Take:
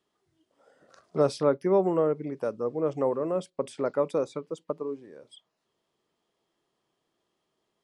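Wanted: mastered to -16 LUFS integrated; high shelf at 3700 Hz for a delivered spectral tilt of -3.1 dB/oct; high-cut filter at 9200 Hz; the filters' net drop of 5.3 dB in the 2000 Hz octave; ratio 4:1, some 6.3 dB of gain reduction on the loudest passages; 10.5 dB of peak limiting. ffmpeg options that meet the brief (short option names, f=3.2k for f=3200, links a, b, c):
-af "lowpass=9.2k,equalizer=f=2k:t=o:g=-7,highshelf=f=3.7k:g=-4.5,acompressor=threshold=-25dB:ratio=4,volume=22dB,alimiter=limit=-5.5dB:level=0:latency=1"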